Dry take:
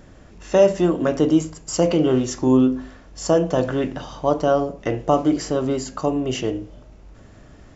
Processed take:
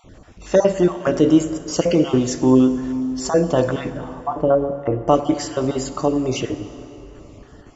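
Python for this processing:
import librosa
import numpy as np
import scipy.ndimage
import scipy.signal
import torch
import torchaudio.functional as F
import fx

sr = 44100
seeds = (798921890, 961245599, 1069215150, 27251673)

y = fx.spec_dropout(x, sr, seeds[0], share_pct=23)
y = fx.lowpass(y, sr, hz=1200.0, slope=12, at=(3.9, 5.08))
y = fx.rev_plate(y, sr, seeds[1], rt60_s=3.4, hf_ratio=0.7, predelay_ms=0, drr_db=11.0)
y = F.gain(torch.from_numpy(y), 2.5).numpy()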